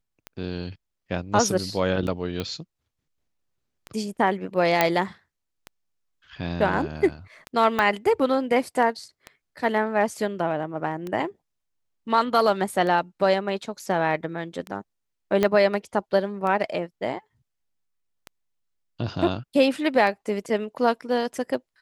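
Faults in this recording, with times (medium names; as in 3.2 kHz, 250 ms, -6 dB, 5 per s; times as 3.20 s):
tick 33 1/3 rpm -19 dBFS
2.40 s: pop -15 dBFS
4.81 s: pop -4 dBFS
7.79 s: pop -10 dBFS
15.43 s: pop -9 dBFS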